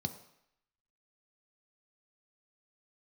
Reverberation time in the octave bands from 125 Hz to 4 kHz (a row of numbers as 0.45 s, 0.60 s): 0.60 s, 0.65 s, 0.70 s, 0.80 s, 0.85 s, 0.75 s